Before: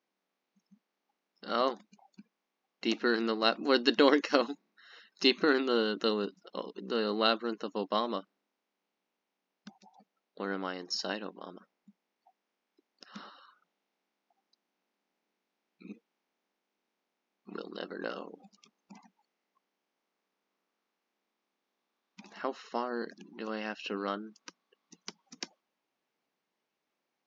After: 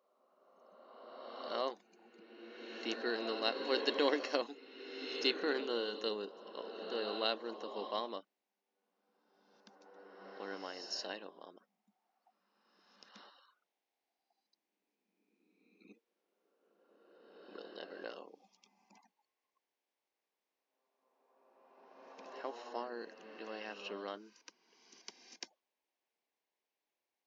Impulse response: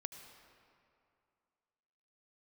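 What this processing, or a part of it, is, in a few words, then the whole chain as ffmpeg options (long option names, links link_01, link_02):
ghost voice: -filter_complex "[0:a]areverse[link_01];[1:a]atrim=start_sample=2205[link_02];[link_01][link_02]afir=irnorm=-1:irlink=0,areverse,highpass=360,equalizer=frequency=1300:width_type=o:width=0.36:gain=-8,volume=-2.5dB"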